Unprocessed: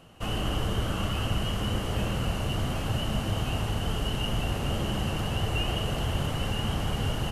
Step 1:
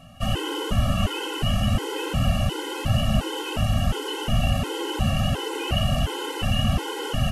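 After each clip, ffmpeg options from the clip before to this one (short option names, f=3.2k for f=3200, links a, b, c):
-af "afftfilt=real='re*gt(sin(2*PI*1.4*pts/sr)*(1-2*mod(floor(b*sr/1024/270),2)),0)':imag='im*gt(sin(2*PI*1.4*pts/sr)*(1-2*mod(floor(b*sr/1024/270),2)),0)':win_size=1024:overlap=0.75,volume=8dB"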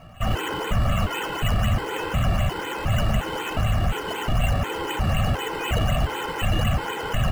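-filter_complex "[0:a]equalizer=f=290:t=o:w=1.5:g=-8.5,acrossover=split=2800[a][b];[a]alimiter=limit=-18.5dB:level=0:latency=1:release=17[c];[b]acrusher=samples=11:mix=1:aa=0.000001:lfo=1:lforange=6.6:lforate=4[d];[c][d]amix=inputs=2:normalize=0,volume=4.5dB"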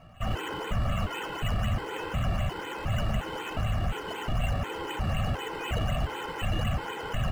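-af "highshelf=f=8.4k:g=-6,volume=-6.5dB"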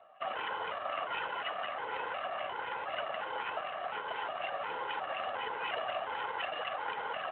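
-af "highpass=f=550:w=0.5412,highpass=f=550:w=1.3066,adynamicsmooth=sensitivity=5:basefreq=1.5k,volume=1.5dB" -ar 8000 -c:a libspeex -b:a 18k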